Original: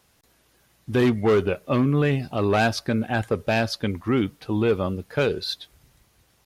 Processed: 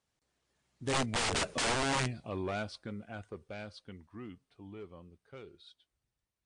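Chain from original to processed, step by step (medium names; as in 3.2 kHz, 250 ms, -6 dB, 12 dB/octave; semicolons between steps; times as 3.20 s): Doppler pass-by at 1.49 s, 27 m/s, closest 2.5 m; integer overflow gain 30 dB; trim +5 dB; MP3 64 kbps 22.05 kHz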